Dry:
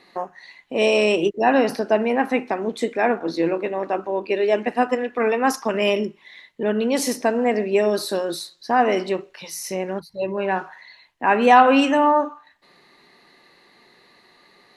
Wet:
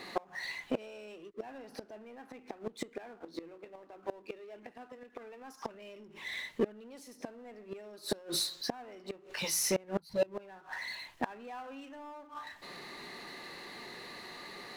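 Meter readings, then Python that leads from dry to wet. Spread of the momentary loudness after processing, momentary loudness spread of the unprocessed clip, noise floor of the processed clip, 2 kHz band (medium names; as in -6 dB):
17 LU, 12 LU, -60 dBFS, -17.5 dB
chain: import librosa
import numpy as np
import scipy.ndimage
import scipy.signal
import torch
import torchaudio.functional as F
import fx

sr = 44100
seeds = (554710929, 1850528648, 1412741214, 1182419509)

y = fx.gate_flip(x, sr, shuts_db=-16.0, range_db=-38)
y = fx.power_curve(y, sr, exponent=0.7)
y = y * 10.0 ** (-5.0 / 20.0)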